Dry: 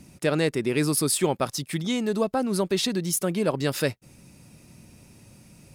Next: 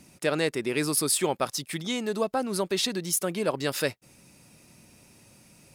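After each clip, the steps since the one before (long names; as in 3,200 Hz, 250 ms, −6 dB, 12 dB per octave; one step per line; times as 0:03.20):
low-shelf EQ 260 Hz −10 dB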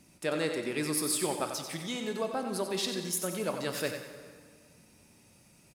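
repeating echo 92 ms, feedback 40%, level −8 dB
dense smooth reverb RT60 1.9 s, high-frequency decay 0.75×, DRR 7.5 dB
level −6.5 dB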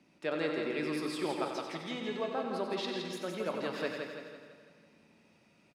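three-way crossover with the lows and the highs turned down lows −15 dB, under 160 Hz, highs −23 dB, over 4,400 Hz
repeating echo 165 ms, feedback 48%, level −5 dB
level −2.5 dB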